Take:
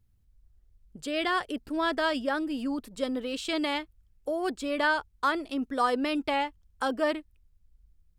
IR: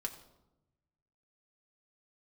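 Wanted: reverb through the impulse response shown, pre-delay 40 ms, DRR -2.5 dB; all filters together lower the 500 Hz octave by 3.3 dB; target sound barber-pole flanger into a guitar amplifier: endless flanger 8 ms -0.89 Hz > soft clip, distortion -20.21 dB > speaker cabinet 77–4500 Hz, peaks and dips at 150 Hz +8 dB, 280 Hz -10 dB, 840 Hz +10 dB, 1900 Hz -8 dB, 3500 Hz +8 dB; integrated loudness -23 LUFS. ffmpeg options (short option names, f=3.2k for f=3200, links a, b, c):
-filter_complex "[0:a]equalizer=f=500:t=o:g=-5.5,asplit=2[a][b];[1:a]atrim=start_sample=2205,adelay=40[c];[b][c]afir=irnorm=-1:irlink=0,volume=3dB[d];[a][d]amix=inputs=2:normalize=0,asplit=2[e][f];[f]adelay=8,afreqshift=-0.89[g];[e][g]amix=inputs=2:normalize=1,asoftclip=threshold=-18dB,highpass=77,equalizer=f=150:t=q:w=4:g=8,equalizer=f=280:t=q:w=4:g=-10,equalizer=f=840:t=q:w=4:g=10,equalizer=f=1.9k:t=q:w=4:g=-8,equalizer=f=3.5k:t=q:w=4:g=8,lowpass=f=4.5k:w=0.5412,lowpass=f=4.5k:w=1.3066,volume=6.5dB"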